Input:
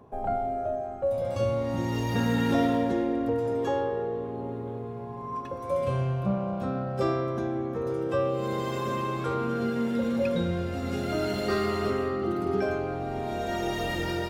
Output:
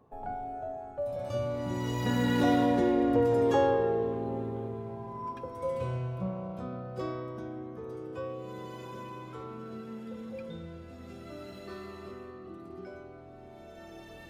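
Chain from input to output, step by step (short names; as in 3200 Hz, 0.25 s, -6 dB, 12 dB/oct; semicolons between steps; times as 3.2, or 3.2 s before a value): Doppler pass-by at 3.52, 16 m/s, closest 14 m; gain +3 dB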